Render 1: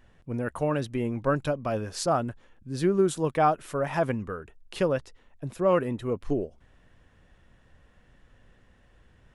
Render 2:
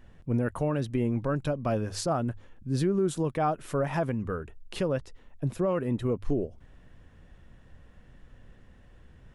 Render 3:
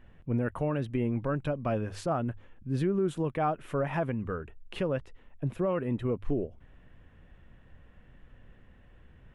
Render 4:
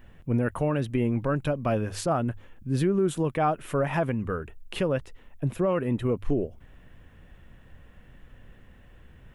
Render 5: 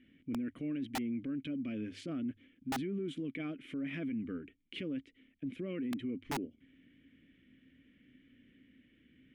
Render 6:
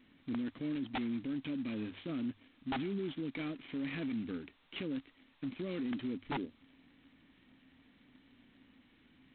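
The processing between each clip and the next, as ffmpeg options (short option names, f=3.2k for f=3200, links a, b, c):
-af "lowshelf=f=370:g=7,bandreject=f=50:t=h:w=6,bandreject=f=100:t=h:w=6,alimiter=limit=-18dB:level=0:latency=1:release=246"
-af "highshelf=f=3.7k:t=q:w=1.5:g=-8,volume=-2dB"
-af "crystalizer=i=1.5:c=0,volume=4dB"
-filter_complex "[0:a]asplit=3[a][b][c];[a]bandpass=f=270:t=q:w=8,volume=0dB[d];[b]bandpass=f=2.29k:t=q:w=8,volume=-6dB[e];[c]bandpass=f=3.01k:t=q:w=8,volume=-9dB[f];[d][e][f]amix=inputs=3:normalize=0,aeval=exprs='(mod(21.1*val(0)+1,2)-1)/21.1':c=same,alimiter=level_in=12.5dB:limit=-24dB:level=0:latency=1:release=21,volume=-12.5dB,volume=5dB"
-ar 8000 -c:a adpcm_g726 -b:a 16k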